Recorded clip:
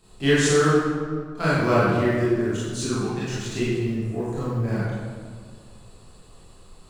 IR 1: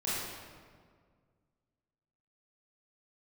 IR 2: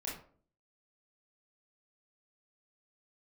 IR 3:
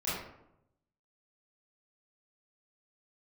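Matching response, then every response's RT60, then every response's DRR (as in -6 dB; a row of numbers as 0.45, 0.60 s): 1; 1.9, 0.50, 0.80 s; -10.0, -5.5, -11.5 dB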